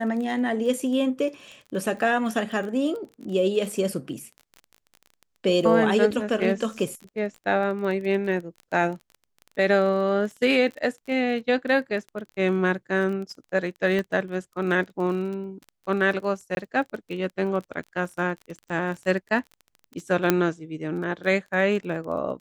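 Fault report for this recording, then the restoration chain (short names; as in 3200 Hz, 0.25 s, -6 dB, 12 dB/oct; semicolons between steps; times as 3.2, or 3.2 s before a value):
crackle 22/s -33 dBFS
13.99 pop -16 dBFS
16.55–16.57 gap 21 ms
20.3 pop -5 dBFS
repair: de-click; interpolate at 16.55, 21 ms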